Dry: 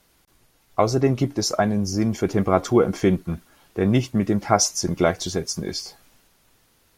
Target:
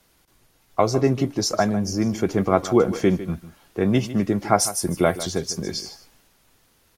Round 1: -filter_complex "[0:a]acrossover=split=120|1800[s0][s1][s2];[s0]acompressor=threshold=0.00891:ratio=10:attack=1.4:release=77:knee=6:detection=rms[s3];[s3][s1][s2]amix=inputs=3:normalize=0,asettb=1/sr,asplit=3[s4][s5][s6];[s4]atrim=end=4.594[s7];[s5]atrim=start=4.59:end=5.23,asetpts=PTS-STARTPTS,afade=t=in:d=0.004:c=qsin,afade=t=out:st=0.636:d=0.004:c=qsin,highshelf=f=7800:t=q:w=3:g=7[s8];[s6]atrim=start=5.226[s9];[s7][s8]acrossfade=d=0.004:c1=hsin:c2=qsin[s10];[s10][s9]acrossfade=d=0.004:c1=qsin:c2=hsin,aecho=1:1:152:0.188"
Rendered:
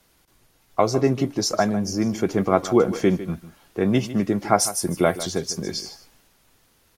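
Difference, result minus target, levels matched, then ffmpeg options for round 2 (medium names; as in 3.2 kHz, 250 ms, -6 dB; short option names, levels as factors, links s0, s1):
compression: peak gain reduction +8 dB
-filter_complex "[0:a]acrossover=split=120|1800[s0][s1][s2];[s0]acompressor=threshold=0.0251:ratio=10:attack=1.4:release=77:knee=6:detection=rms[s3];[s3][s1][s2]amix=inputs=3:normalize=0,asettb=1/sr,asplit=3[s4][s5][s6];[s4]atrim=end=4.594[s7];[s5]atrim=start=4.59:end=5.23,asetpts=PTS-STARTPTS,afade=t=in:d=0.004:c=qsin,afade=t=out:st=0.636:d=0.004:c=qsin,highshelf=f=7800:t=q:w=3:g=7[s8];[s6]atrim=start=5.226[s9];[s7][s8]acrossfade=d=0.004:c1=hsin:c2=qsin[s10];[s10][s9]acrossfade=d=0.004:c1=qsin:c2=hsin,aecho=1:1:152:0.188"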